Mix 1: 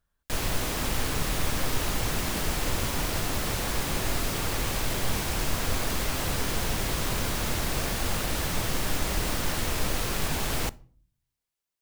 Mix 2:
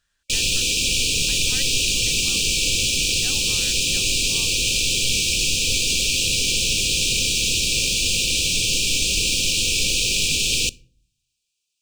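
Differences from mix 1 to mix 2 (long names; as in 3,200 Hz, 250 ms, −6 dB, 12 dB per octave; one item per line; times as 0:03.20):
background: add linear-phase brick-wall band-stop 570–2,300 Hz
master: add flat-topped bell 3,700 Hz +15.5 dB 2.8 octaves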